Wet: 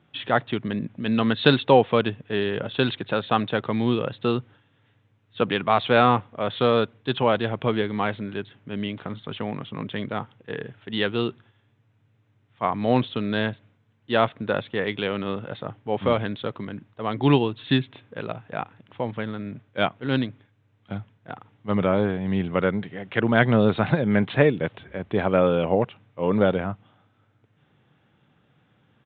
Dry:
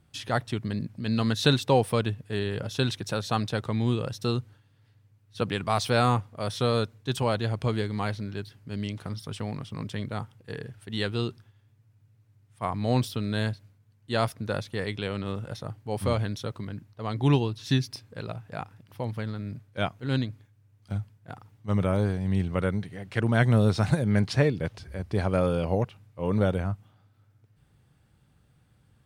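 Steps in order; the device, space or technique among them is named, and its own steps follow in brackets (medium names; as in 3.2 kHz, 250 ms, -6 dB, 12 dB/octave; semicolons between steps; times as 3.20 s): Bluetooth headset (high-pass 190 Hz 12 dB/octave; resampled via 8 kHz; trim +6.5 dB; SBC 64 kbps 16 kHz)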